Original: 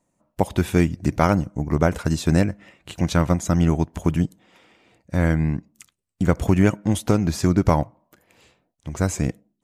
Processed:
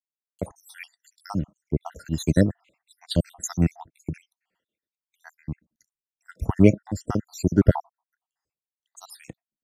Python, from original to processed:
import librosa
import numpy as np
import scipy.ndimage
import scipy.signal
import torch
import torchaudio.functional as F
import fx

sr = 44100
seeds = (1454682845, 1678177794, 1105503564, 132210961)

y = fx.spec_dropout(x, sr, seeds[0], share_pct=72)
y = fx.band_widen(y, sr, depth_pct=100)
y = F.gain(torch.from_numpy(y), -4.0).numpy()